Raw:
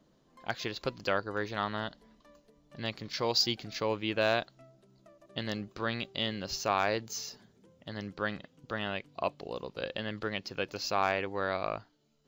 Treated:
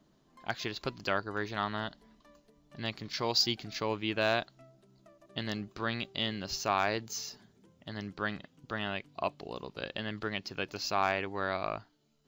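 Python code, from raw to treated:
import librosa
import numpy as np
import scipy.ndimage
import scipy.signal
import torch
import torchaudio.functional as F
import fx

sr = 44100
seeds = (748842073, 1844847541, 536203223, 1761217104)

y = fx.peak_eq(x, sr, hz=510.0, db=-8.0, octaves=0.22)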